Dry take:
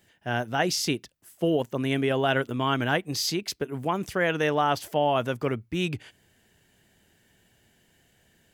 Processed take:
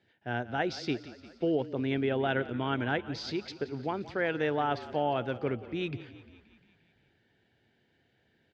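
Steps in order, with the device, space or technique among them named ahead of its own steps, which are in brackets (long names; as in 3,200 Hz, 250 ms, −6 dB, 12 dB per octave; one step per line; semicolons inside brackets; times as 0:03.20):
frequency-shifting delay pedal into a guitar cabinet (echo with shifted repeats 175 ms, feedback 65%, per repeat −32 Hz, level −16.5 dB; loudspeaker in its box 100–3,900 Hz, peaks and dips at 180 Hz −7 dB, 620 Hz −4 dB, 1,100 Hz −9 dB, 1,900 Hz −3 dB, 2,900 Hz −7 dB)
level −3 dB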